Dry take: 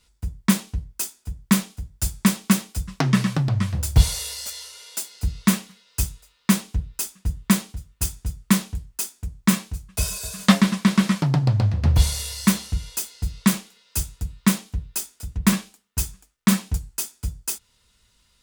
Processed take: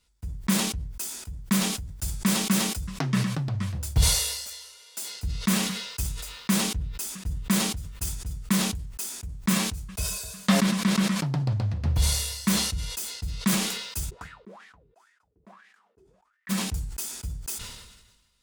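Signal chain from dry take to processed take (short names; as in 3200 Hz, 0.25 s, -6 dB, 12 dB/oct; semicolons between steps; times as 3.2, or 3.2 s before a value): 14.09–16.49 wah 3.1 Hz -> 1.1 Hz 380–1900 Hz, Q 12; sustainer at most 48 dB/s; gain -7.5 dB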